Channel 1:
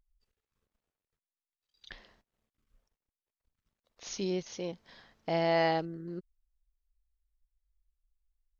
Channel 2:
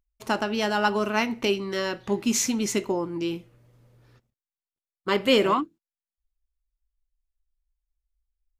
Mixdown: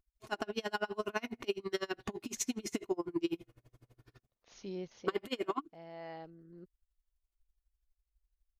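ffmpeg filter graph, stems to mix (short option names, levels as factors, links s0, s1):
-filter_complex "[0:a]highshelf=f=4200:g=-12,adelay=450,volume=0.422[s0];[1:a]acompressor=threshold=0.0355:ratio=6,aecho=1:1:2.8:0.47,aeval=exprs='val(0)*pow(10,-32*(0.5-0.5*cos(2*PI*12*n/s))/20)':c=same,volume=1.12,asplit=2[s1][s2];[s2]apad=whole_len=398771[s3];[s0][s3]sidechaincompress=threshold=0.00708:ratio=8:attack=5.6:release=1320[s4];[s4][s1]amix=inputs=2:normalize=0"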